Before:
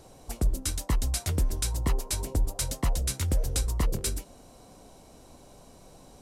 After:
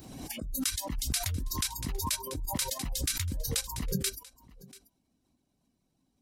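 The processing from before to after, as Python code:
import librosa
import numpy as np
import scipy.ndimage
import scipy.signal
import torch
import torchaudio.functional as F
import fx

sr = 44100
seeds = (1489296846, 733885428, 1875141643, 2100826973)

y = fx.highpass(x, sr, hz=53.0, slope=6)
y = fx.dereverb_blind(y, sr, rt60_s=0.55)
y = fx.notch(y, sr, hz=1400.0, q=19.0)
y = fx.noise_reduce_blind(y, sr, reduce_db=28)
y = fx.graphic_eq(y, sr, hz=(250, 500, 1000, 8000), db=(8, -11, -5, -5))
y = fx.over_compress(y, sr, threshold_db=-34.0, ratio=-1.0)
y = y + 10.0 ** (-21.0 / 20.0) * np.pad(y, (int(687 * sr / 1000.0), 0))[:len(y)]
y = fx.pre_swell(y, sr, db_per_s=43.0)
y = y * librosa.db_to_amplitude(1.5)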